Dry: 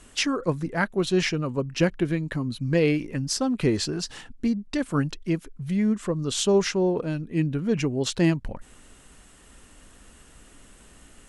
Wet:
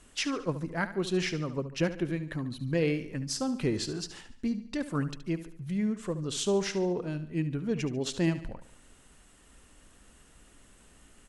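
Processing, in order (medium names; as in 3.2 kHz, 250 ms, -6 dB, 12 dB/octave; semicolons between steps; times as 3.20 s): feedback delay 72 ms, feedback 46%, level -13 dB; trim -6.5 dB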